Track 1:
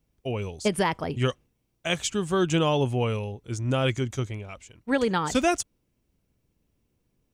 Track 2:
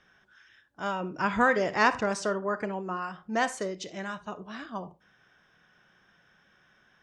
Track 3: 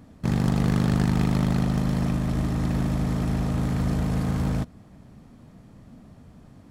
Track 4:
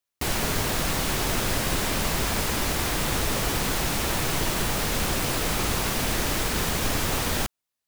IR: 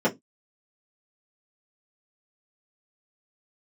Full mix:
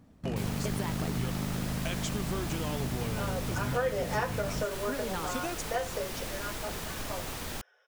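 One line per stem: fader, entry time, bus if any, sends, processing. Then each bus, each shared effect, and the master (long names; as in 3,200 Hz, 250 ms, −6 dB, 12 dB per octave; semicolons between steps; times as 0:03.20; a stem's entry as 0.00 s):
−1.0 dB, 0.00 s, no send, downward compressor, threshold −31 dBFS, peak gain reduction 13 dB
−14.0 dB, 2.35 s, send −4.5 dB, Butterworth high-pass 410 Hz 96 dB per octave; high-shelf EQ 2,400 Hz +9 dB
−9.0 dB, 0.00 s, no send, no processing
−12.0 dB, 0.15 s, no send, no processing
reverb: on, RT60 0.15 s, pre-delay 3 ms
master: downward compressor 2.5 to 1, threshold −29 dBFS, peak gain reduction 8.5 dB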